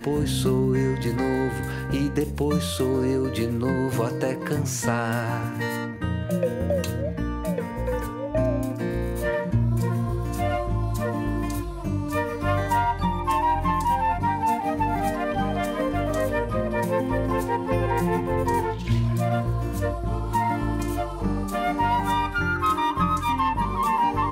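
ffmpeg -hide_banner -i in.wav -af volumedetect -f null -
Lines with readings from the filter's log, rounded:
mean_volume: -24.3 dB
max_volume: -11.2 dB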